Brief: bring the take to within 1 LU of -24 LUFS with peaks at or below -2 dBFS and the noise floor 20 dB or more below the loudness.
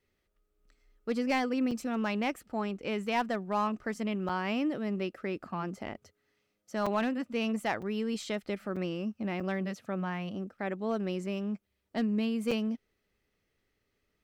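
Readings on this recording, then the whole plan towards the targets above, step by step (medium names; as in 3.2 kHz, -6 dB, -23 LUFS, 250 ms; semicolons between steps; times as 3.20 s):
clipped samples 0.3%; clipping level -21.5 dBFS; dropouts 7; longest dropout 5.2 ms; loudness -33.5 LUFS; peak level -21.5 dBFS; loudness target -24.0 LUFS
-> clip repair -21.5 dBFS; interpolate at 1.71/4.29/6.86/7.82/8.76/9.40/12.51 s, 5.2 ms; trim +9.5 dB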